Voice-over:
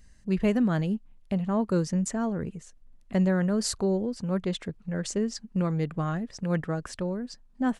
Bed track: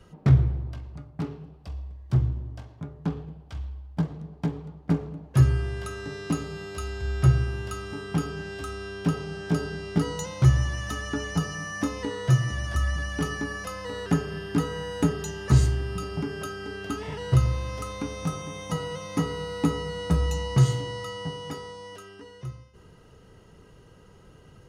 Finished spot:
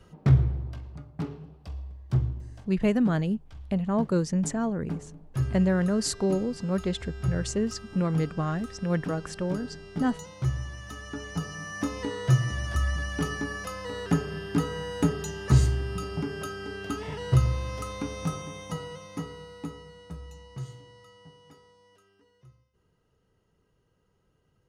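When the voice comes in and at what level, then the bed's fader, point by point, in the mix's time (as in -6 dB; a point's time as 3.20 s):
2.40 s, +0.5 dB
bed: 2.07 s -1.5 dB
2.88 s -9.5 dB
10.82 s -9.5 dB
12.02 s -1 dB
18.32 s -1 dB
20.22 s -18.5 dB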